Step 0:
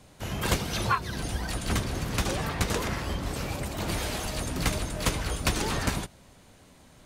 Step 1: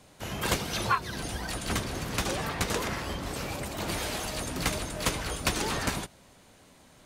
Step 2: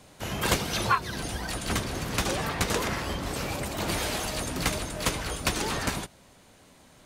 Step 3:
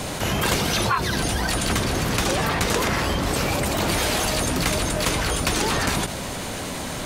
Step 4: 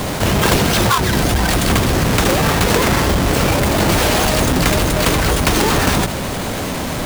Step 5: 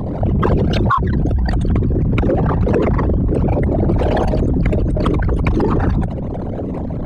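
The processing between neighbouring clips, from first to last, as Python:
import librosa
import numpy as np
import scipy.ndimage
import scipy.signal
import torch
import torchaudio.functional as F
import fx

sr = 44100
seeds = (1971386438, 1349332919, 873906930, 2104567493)

y1 = fx.low_shelf(x, sr, hz=160.0, db=-7.0)
y2 = fx.rider(y1, sr, range_db=4, speed_s=2.0)
y2 = y2 * librosa.db_to_amplitude(1.5)
y3 = fx.env_flatten(y2, sr, amount_pct=70)
y4 = fx.halfwave_hold(y3, sr)
y4 = y4 * librosa.db_to_amplitude(3.0)
y5 = fx.envelope_sharpen(y4, sr, power=3.0)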